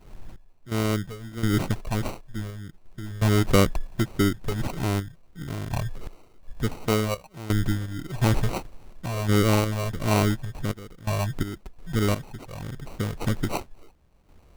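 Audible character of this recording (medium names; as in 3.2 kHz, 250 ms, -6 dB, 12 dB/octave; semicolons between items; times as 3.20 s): random-step tremolo 2.8 Hz, depth 90%; phasing stages 8, 1.5 Hz, lowest notch 270–4800 Hz; aliases and images of a low sample rate 1.7 kHz, jitter 0%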